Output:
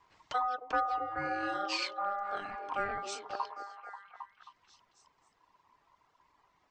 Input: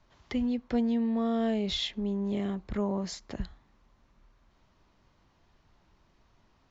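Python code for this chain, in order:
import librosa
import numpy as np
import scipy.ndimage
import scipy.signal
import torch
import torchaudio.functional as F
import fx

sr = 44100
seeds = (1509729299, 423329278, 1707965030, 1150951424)

y = fx.dereverb_blind(x, sr, rt60_s=1.9)
y = y * np.sin(2.0 * np.pi * 1000.0 * np.arange(len(y)) / sr)
y = fx.echo_stepped(y, sr, ms=268, hz=380.0, octaves=0.7, feedback_pct=70, wet_db=-3.5)
y = y * librosa.db_to_amplitude(1.0)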